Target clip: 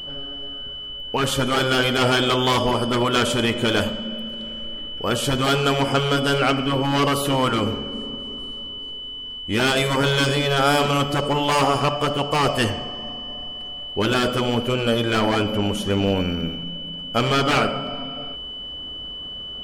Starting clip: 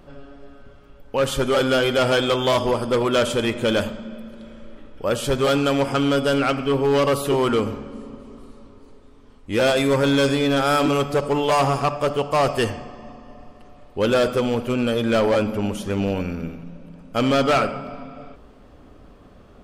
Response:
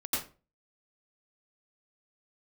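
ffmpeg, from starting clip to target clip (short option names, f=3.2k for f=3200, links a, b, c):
-af "afftfilt=real='re*lt(hypot(re,im),0.708)':imag='im*lt(hypot(re,im),0.708)':win_size=1024:overlap=0.75,aeval=exprs='val(0)+0.02*sin(2*PI*3000*n/s)':c=same,volume=3dB"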